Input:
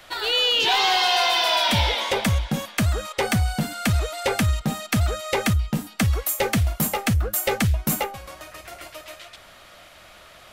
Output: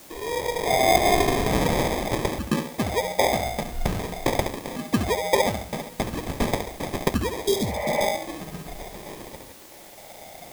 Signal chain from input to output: self-modulated delay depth 0.38 ms; high shelf 5500 Hz -5.5 dB; notch 2700 Hz; flutter echo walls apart 11.9 m, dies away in 0.57 s; LFO band-pass saw up 0.42 Hz 290–3600 Hz; sample-and-hold 31×; spectral repair 7.48–7.99, 440–3200 Hz both; in parallel at -7 dB: requantised 8-bit, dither triangular; on the sum: gain +7 dB

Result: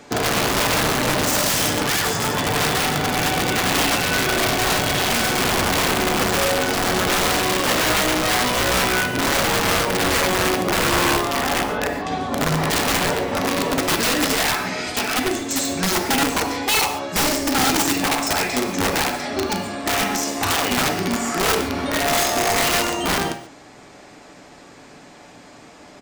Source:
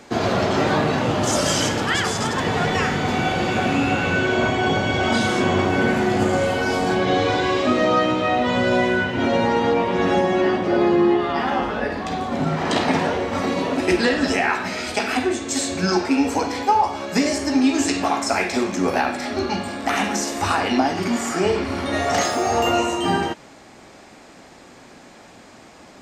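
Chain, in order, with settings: comb 6.9 ms, depth 31%; wrapped overs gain 14 dB; reverb, pre-delay 3 ms, DRR 8 dB

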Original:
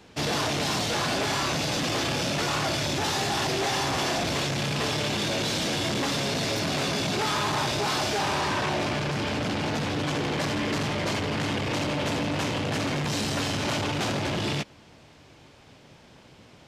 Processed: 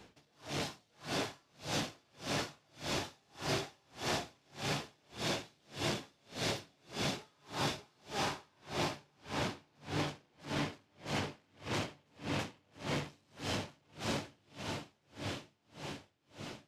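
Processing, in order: compressor 3:1, threshold -30 dBFS, peak gain reduction 5 dB; diffused feedback echo 0.94 s, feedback 61%, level -4 dB; dB-linear tremolo 1.7 Hz, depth 39 dB; gain -3.5 dB

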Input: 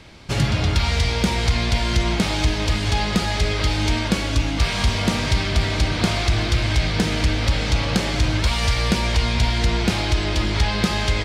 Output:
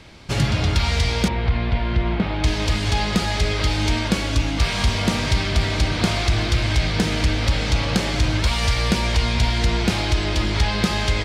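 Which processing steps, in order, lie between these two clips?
1.28–2.44 air absorption 410 m

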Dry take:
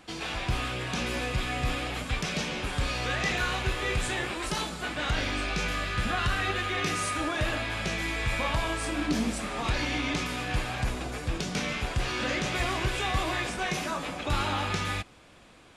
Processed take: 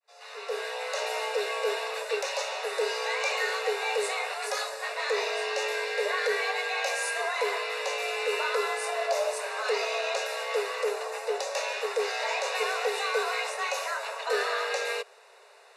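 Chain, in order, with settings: opening faded in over 0.87 s; Butterworth band-stop 2800 Hz, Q 4.9; frequency shift +380 Hz

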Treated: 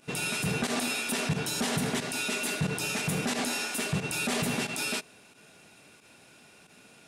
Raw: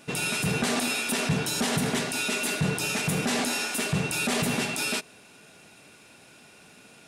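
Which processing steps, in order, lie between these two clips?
pump 90 bpm, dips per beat 1, -12 dB, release 68 ms; gain -3 dB

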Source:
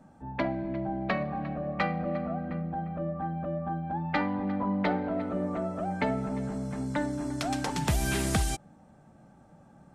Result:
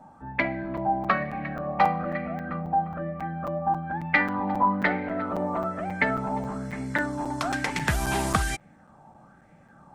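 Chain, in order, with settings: crackling interface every 0.27 s, samples 256, zero, from 0.77; LFO bell 1.1 Hz 850–2200 Hz +15 dB

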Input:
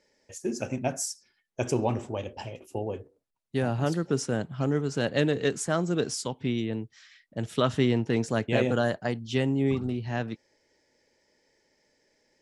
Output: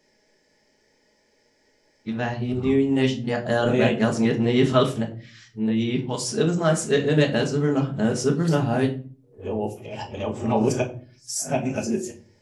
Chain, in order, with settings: whole clip reversed; shoebox room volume 280 m³, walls furnished, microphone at 1.4 m; gain +3 dB

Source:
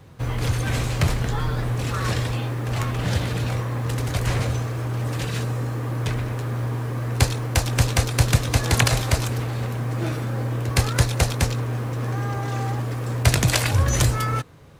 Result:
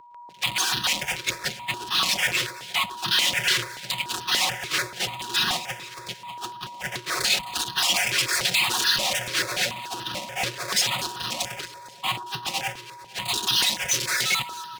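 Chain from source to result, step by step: random spectral dropouts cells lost 50%; tube stage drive 24 dB, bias 0.4; 8.7–11.44 bell 590 Hz +15 dB 0.58 oct; Schmitt trigger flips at -43 dBFS; limiter -34.5 dBFS, peak gain reduction 10 dB; weighting filter D; gate -32 dBFS, range -48 dB; HPF 47 Hz; comb 5.5 ms, depth 61%; whine 960 Hz -44 dBFS; echo with dull and thin repeats by turns 0.113 s, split 1300 Hz, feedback 78%, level -14 dB; step phaser 6.9 Hz 210–2200 Hz; gain +8.5 dB

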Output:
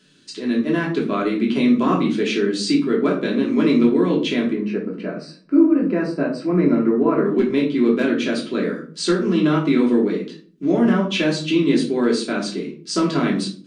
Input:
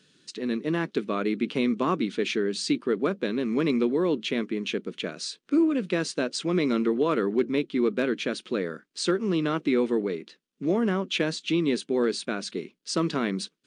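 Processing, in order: 4.53–7.26 running mean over 13 samples; reverb RT60 0.45 s, pre-delay 3 ms, DRR -3.5 dB; gain +1 dB

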